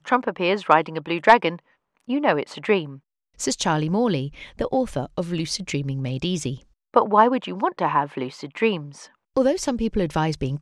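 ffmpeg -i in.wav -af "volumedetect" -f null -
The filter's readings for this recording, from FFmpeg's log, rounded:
mean_volume: -22.9 dB
max_volume: -1.2 dB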